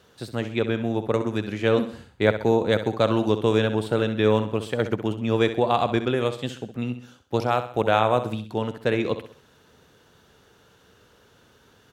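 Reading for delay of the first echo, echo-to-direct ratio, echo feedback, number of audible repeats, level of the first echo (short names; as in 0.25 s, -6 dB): 65 ms, -10.0 dB, 43%, 4, -11.0 dB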